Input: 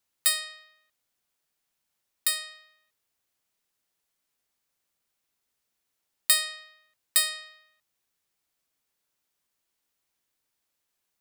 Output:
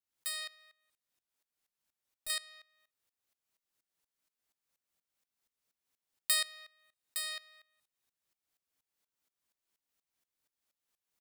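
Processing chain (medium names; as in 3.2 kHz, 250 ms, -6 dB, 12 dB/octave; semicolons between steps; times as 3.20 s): 0.55–2.30 s: valve stage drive 30 dB, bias 0.3; two-slope reverb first 0.54 s, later 1.7 s, from -27 dB, DRR 18.5 dB; sawtooth tremolo in dB swelling 4.2 Hz, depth 18 dB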